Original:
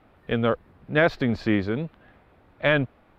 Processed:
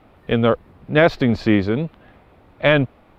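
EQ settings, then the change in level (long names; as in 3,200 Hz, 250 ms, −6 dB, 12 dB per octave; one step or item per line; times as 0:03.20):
parametric band 1,600 Hz −4 dB 0.53 octaves
+6.5 dB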